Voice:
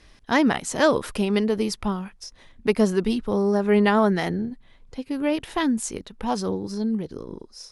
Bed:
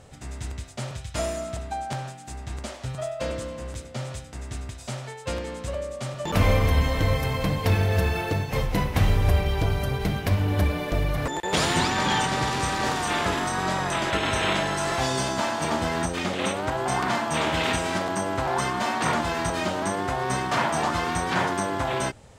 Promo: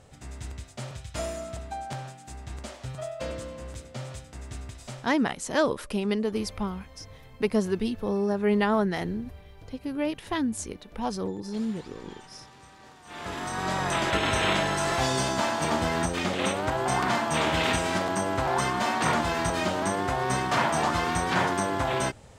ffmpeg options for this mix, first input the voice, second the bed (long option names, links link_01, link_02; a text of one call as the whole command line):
ffmpeg -i stem1.wav -i stem2.wav -filter_complex "[0:a]adelay=4750,volume=-5dB[link_01];[1:a]volume=20.5dB,afade=type=out:start_time=4.8:duration=0.48:silence=0.0891251,afade=type=in:start_time=13.04:duration=0.88:silence=0.0562341[link_02];[link_01][link_02]amix=inputs=2:normalize=0" out.wav